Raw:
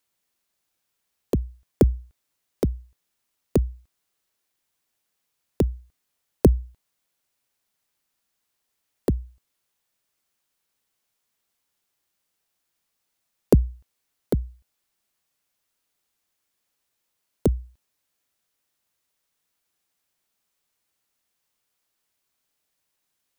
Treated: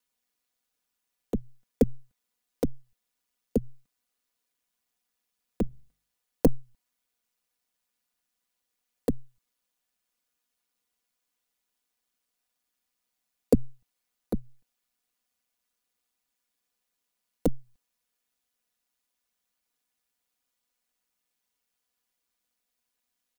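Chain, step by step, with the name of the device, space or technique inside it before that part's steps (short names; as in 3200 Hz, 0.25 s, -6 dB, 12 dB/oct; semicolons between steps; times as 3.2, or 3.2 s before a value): ring-modulated robot voice (ring modulator 63 Hz; comb 4.1 ms, depth 70%); 5.63–6.47 de-hum 49.33 Hz, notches 32; gain -3.5 dB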